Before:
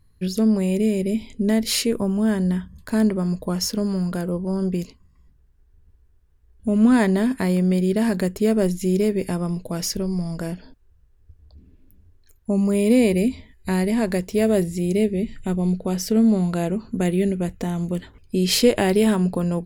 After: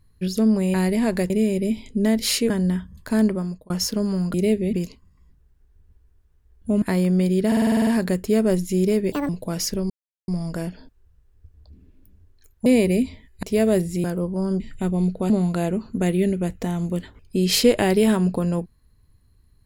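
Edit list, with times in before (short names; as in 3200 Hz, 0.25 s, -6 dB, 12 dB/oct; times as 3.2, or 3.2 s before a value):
1.94–2.31 cut
3.1–3.51 fade out
4.15–4.71 swap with 14.86–15.25
6.8–7.34 cut
7.99 stutter 0.05 s, 9 plays
9.24–9.52 speed 165%
10.13 insert silence 0.38 s
12.51–12.92 cut
13.69–14.25 move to 0.74
15.95–16.29 cut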